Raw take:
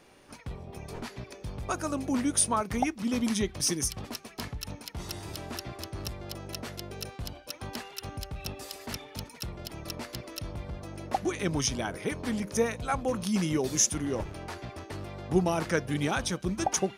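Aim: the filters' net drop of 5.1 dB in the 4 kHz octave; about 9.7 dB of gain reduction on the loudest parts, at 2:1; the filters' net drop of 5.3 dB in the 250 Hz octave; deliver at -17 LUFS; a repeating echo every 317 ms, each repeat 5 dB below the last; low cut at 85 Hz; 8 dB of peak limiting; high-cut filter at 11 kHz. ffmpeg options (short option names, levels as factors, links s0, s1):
-af "highpass=85,lowpass=11000,equalizer=f=250:t=o:g=-7,equalizer=f=4000:t=o:g=-7.5,acompressor=threshold=0.00891:ratio=2,alimiter=level_in=2:limit=0.0631:level=0:latency=1,volume=0.501,aecho=1:1:317|634|951|1268|1585|1902|2219:0.562|0.315|0.176|0.0988|0.0553|0.031|0.0173,volume=16.8"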